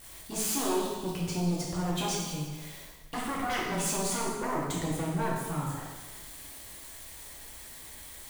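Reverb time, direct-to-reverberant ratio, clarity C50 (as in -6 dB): 1.4 s, -5.0 dB, 0.5 dB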